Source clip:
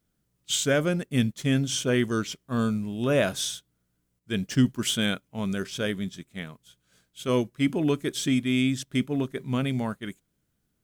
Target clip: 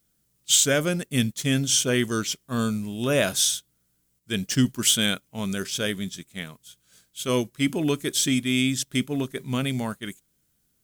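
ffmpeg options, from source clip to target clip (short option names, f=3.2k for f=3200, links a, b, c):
-af "highshelf=f=3.5k:g=12"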